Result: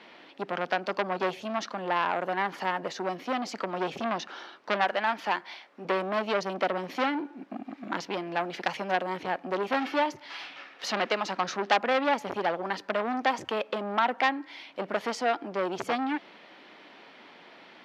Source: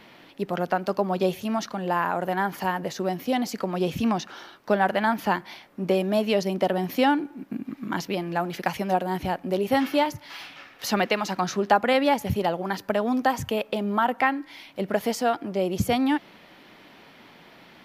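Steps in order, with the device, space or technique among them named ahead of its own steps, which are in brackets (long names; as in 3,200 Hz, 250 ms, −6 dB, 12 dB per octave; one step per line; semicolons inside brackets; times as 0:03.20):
0:04.84–0:05.85: low-shelf EQ 350 Hz −10.5 dB
public-address speaker with an overloaded transformer (saturating transformer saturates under 2,500 Hz; band-pass filter 290–5,000 Hz)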